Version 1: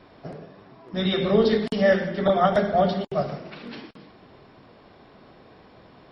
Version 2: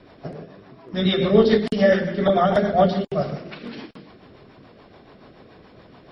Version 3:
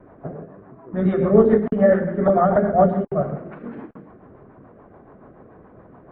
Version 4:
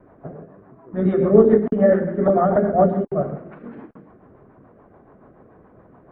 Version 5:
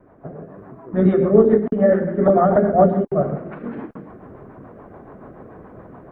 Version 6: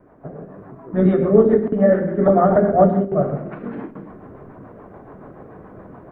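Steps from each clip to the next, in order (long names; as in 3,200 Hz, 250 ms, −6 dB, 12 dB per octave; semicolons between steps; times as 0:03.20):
rotating-speaker cabinet horn 7 Hz; level +5 dB
low-pass filter 1,500 Hz 24 dB per octave; level +1.5 dB
dynamic equaliser 330 Hz, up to +6 dB, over −29 dBFS, Q 0.91; level −3 dB
automatic gain control gain up to 10 dB; level −1 dB
convolution reverb RT60 0.70 s, pre-delay 7 ms, DRR 11.5 dB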